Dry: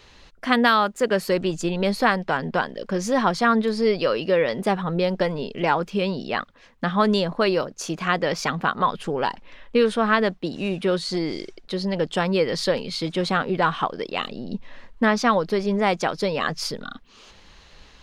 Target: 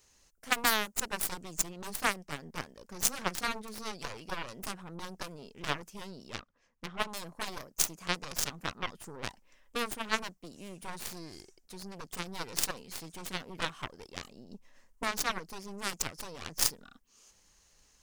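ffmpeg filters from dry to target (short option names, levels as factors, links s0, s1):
-filter_complex "[0:a]aexciter=amount=10.9:drive=4:freq=5600,aeval=exprs='0.708*(cos(1*acos(clip(val(0)/0.708,-1,1)))-cos(1*PI/2))+0.224*(cos(3*acos(clip(val(0)/0.708,-1,1)))-cos(3*PI/2))+0.0224*(cos(6*acos(clip(val(0)/0.708,-1,1)))-cos(6*PI/2))+0.0178*(cos(7*acos(clip(val(0)/0.708,-1,1)))-cos(7*PI/2))':c=same,asettb=1/sr,asplit=3[s0][s1][s2];[s0]atrim=end=6.404[s3];[s1]atrim=start=6.4:end=7.17,asetpts=PTS-STARTPTS,afade=t=in:d=0.004:c=qsin,afade=t=out:st=0.766:d=0.004:c=qsin,adynamicsmooth=sensitivity=7.5:basefreq=4100[s4];[s2]atrim=start=7.166[s5];[s3][s4]acrossfade=d=0.004:c1=hsin:c2=qsin[s6];[s6][s5]acrossfade=d=0.004:c1=qsin:c2=hsin,volume=0.891"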